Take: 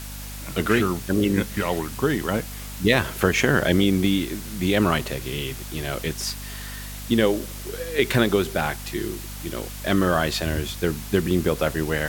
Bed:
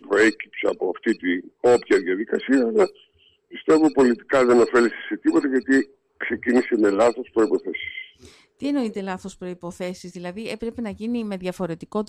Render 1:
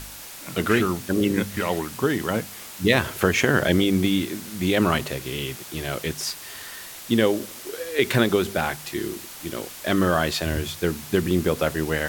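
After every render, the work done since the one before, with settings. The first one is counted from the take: de-hum 50 Hz, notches 5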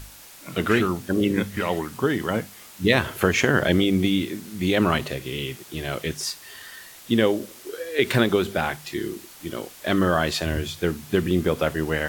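noise print and reduce 6 dB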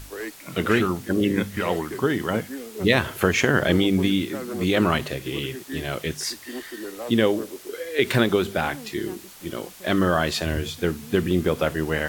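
add bed -17 dB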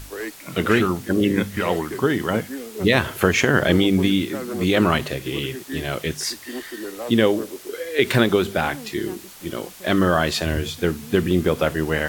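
gain +2.5 dB; limiter -3 dBFS, peak gain reduction 2.5 dB

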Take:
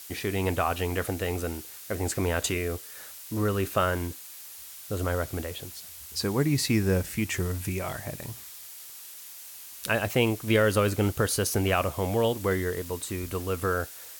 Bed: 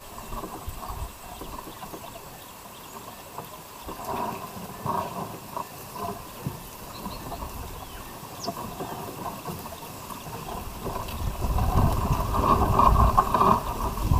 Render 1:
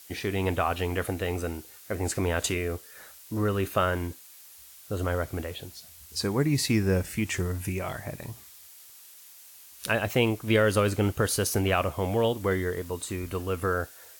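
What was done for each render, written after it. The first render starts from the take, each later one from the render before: noise print and reduce 6 dB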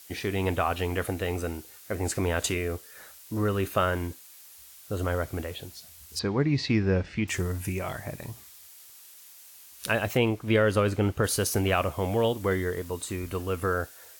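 6.19–7.28 LPF 4600 Hz 24 dB/oct; 10.17–11.24 high shelf 5000 Hz -9.5 dB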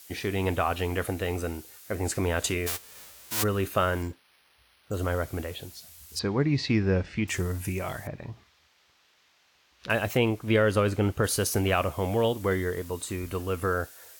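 2.66–3.42 spectral whitening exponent 0.1; 4.02–4.94 careless resampling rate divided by 6×, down filtered, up hold; 8.07–9.9 air absorption 230 m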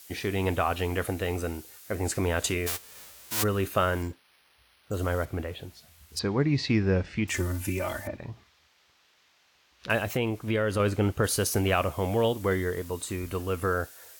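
5.25–6.17 tone controls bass +1 dB, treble -10 dB; 7.34–8.17 comb 3.4 ms, depth 82%; 9.98–10.8 compressor 2:1, threshold -25 dBFS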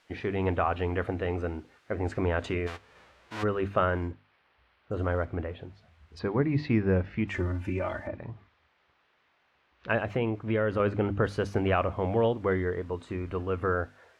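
LPF 2000 Hz 12 dB/oct; notches 50/100/150/200/250/300 Hz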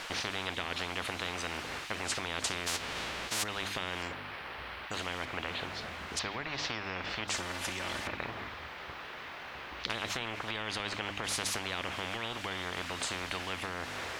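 compressor, threshold -27 dBFS, peak gain reduction 7.5 dB; spectral compressor 10:1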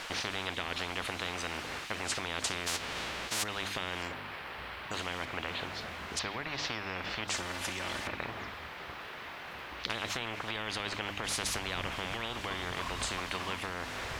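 add bed -24 dB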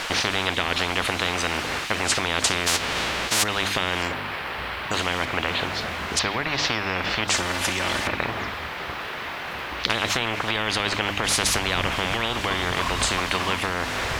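gain +12 dB

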